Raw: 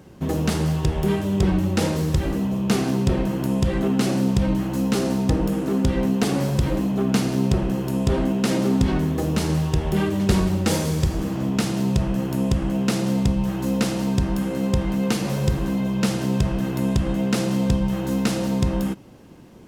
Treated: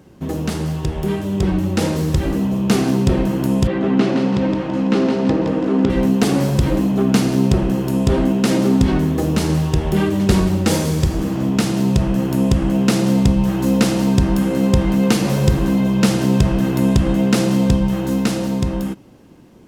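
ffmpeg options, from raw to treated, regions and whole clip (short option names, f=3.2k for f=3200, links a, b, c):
-filter_complex "[0:a]asettb=1/sr,asplit=3[a][b][c];[a]atrim=end=3.674[d];[b]atrim=start=3.67:end=5.9,asetpts=PTS-STARTPTS,afade=t=in:d=0.004:c=qsin,afade=t=out:st=2.226:d=0.004:c=qsin,highpass=170,lowpass=3.3k,aecho=1:1:166|332|498|664|830:0.562|0.247|0.109|0.0479|0.0211,atrim=end_sample=98343[e];[c]atrim=start=5.896[f];[d][e]acrossfade=d=0.004:c1=hsin:c2=qsin[g];[g][f]acrossfade=d=0.004:c1=qsin:c2=hsin,equalizer=f=290:t=o:w=0.77:g=2.5,dynaudnorm=f=220:g=17:m=11.5dB,volume=-1dB"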